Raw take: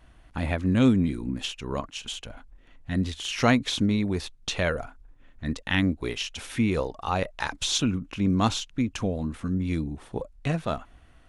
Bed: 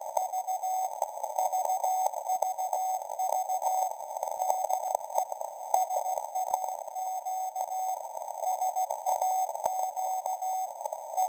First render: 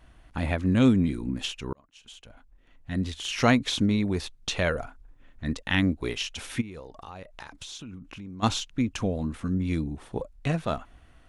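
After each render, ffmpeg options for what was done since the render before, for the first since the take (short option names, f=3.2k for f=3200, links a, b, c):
-filter_complex "[0:a]asplit=3[a][b][c];[a]afade=t=out:st=6.6:d=0.02[d];[b]acompressor=threshold=-39dB:ratio=6:attack=3.2:release=140:knee=1:detection=peak,afade=t=in:st=6.6:d=0.02,afade=t=out:st=8.42:d=0.02[e];[c]afade=t=in:st=8.42:d=0.02[f];[d][e][f]amix=inputs=3:normalize=0,asplit=2[g][h];[g]atrim=end=1.73,asetpts=PTS-STARTPTS,afade=t=out:st=1.726:d=0.004:c=hsin[i];[h]atrim=start=1.73,asetpts=PTS-STARTPTS,afade=t=in:d=1.65[j];[i][j]concat=n=2:v=0:a=1"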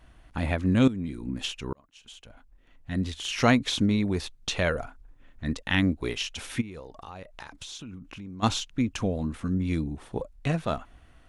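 -filter_complex "[0:a]asplit=2[a][b];[a]atrim=end=0.88,asetpts=PTS-STARTPTS,afade=t=out:st=0.876:d=0.004:c=hsin:silence=0.16788[c];[b]atrim=start=0.88,asetpts=PTS-STARTPTS,afade=t=in:d=0.59:silence=0.16788[d];[c][d]concat=n=2:v=0:a=1"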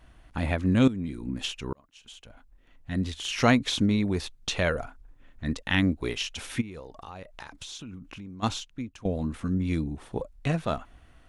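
-filter_complex "[0:a]asplit=2[a][b];[a]atrim=end=9.05,asetpts=PTS-STARTPTS,afade=t=out:st=8.13:d=0.92:silence=0.11885[c];[b]atrim=start=9.05,asetpts=PTS-STARTPTS,afade=t=in:d=0.004:c=hsin:silence=0.11885[d];[c][d]concat=n=2:v=0:a=1"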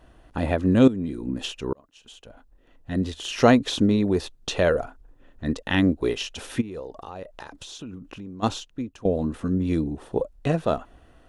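-af "equalizer=f=450:w=0.81:g=9,bandreject=f=2.2k:w=8.8"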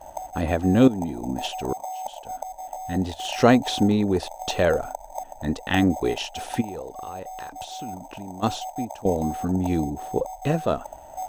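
-filter_complex "[1:a]volume=-4.5dB[a];[0:a][a]amix=inputs=2:normalize=0"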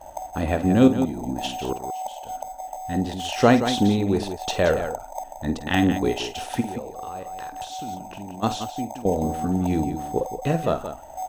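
-af "aecho=1:1:49.56|174.9:0.251|0.316"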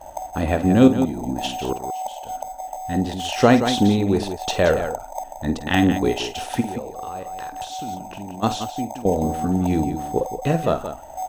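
-af "volume=2.5dB,alimiter=limit=-2dB:level=0:latency=1"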